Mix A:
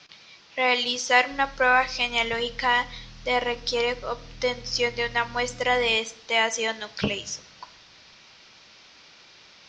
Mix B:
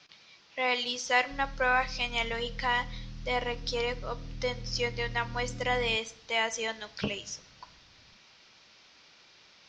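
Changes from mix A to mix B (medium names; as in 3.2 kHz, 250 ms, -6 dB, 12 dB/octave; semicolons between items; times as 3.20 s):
speech -6.5 dB; background +4.0 dB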